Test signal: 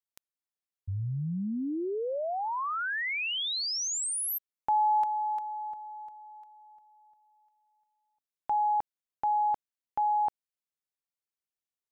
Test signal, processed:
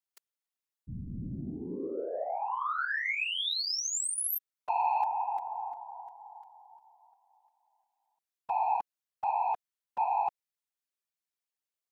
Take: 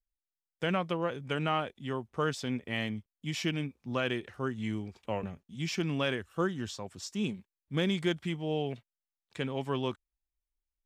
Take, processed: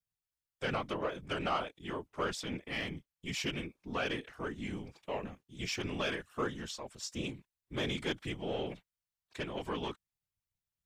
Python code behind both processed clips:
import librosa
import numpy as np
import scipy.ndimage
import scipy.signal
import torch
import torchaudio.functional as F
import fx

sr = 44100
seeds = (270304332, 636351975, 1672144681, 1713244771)

y = 10.0 ** (-22.0 / 20.0) * np.tanh(x / 10.0 ** (-22.0 / 20.0))
y = fx.low_shelf(y, sr, hz=380.0, db=-7.5)
y = fx.whisperise(y, sr, seeds[0])